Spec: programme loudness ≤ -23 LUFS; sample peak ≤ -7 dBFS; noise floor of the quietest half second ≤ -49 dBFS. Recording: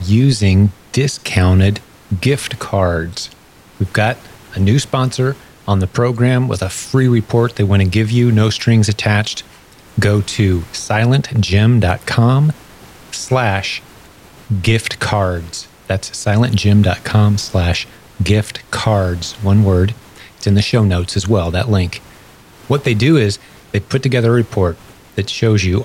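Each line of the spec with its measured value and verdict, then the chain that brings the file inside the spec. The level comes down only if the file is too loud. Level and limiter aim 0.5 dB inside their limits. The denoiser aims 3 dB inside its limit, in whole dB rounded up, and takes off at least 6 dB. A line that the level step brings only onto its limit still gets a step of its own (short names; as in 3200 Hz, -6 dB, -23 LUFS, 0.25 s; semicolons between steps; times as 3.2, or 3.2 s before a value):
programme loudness -15.0 LUFS: fail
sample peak -2.0 dBFS: fail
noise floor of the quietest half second -43 dBFS: fail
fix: gain -8.5 dB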